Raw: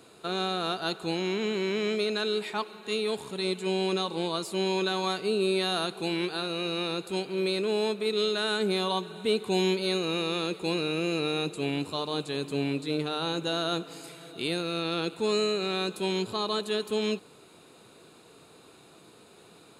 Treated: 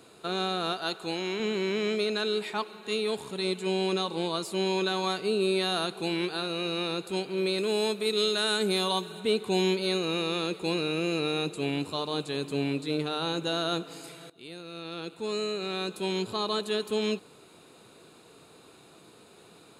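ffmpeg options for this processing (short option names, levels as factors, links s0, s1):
-filter_complex "[0:a]asettb=1/sr,asplit=3[s0][s1][s2];[s0]atrim=end=0.734[s3];[s1]atrim=start=0.73:end=1.4,asetpts=PTS-STARTPTS,afade=t=in:d=0.004:c=qsin,afade=t=out:st=0.666:d=0.004:c=qsin,lowshelf=f=250:g=-8.5[s4];[s2]atrim=start=1.396[s5];[s3][s4]acrossfade=d=0.004:c1=hsin:c2=qsin[s6];[s6][s5]acrossfade=d=0.004:c1=qsin:c2=hsin,asettb=1/sr,asplit=3[s7][s8][s9];[s7]atrim=end=7.584[s10];[s8]atrim=start=7.58:end=9.2,asetpts=PTS-STARTPTS,afade=t=in:d=0.004:c=qsin,afade=t=out:st=1.616:d=0.004:c=qsin,aemphasis=mode=production:type=cd[s11];[s9]atrim=start=9.196[s12];[s10][s11]acrossfade=d=0.004:c1=hsin:c2=qsin[s13];[s13][s12]acrossfade=d=0.004:c1=qsin:c2=hsin,asplit=2[s14][s15];[s14]atrim=end=14.3,asetpts=PTS-STARTPTS,afade=t=out:st=14.296:d=0.004:c=hsin:silence=0.125893[s16];[s15]atrim=start=14.3,asetpts=PTS-STARTPTS,afade=t=in:d=2.12:silence=0.125893[s17];[s16][s17]concat=n=2:v=0:a=1"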